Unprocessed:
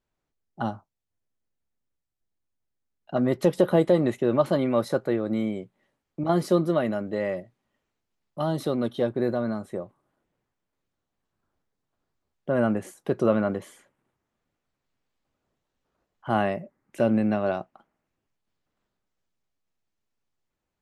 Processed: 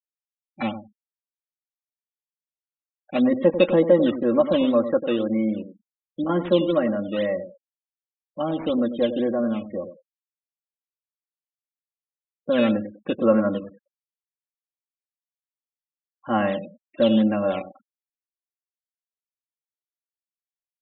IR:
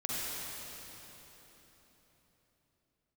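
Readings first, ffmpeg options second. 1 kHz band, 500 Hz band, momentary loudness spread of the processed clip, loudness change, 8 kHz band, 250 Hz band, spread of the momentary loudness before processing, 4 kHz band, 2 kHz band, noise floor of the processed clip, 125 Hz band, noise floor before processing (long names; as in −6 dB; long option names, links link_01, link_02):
+0.5 dB, +3.5 dB, 15 LU, +3.0 dB, below −30 dB, +4.0 dB, 13 LU, +7.5 dB, +2.0 dB, below −85 dBFS, −2.5 dB, −83 dBFS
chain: -filter_complex "[0:a]aecho=1:1:3.7:0.9,acrusher=samples=8:mix=1:aa=0.000001:lfo=1:lforange=12.8:lforate=2,aresample=8000,aresample=44100,bandreject=frequency=820:width=13,asplit=2[link_01][link_02];[link_02]adelay=96,lowpass=frequency=970:poles=1,volume=-9.5dB,asplit=2[link_03][link_04];[link_04]adelay=96,lowpass=frequency=970:poles=1,volume=0.21,asplit=2[link_05][link_06];[link_06]adelay=96,lowpass=frequency=970:poles=1,volume=0.21[link_07];[link_01][link_03][link_05][link_07]amix=inputs=4:normalize=0,afftfilt=real='re*gte(hypot(re,im),0.0141)':imag='im*gte(hypot(re,im),0.0141)':win_size=1024:overlap=0.75"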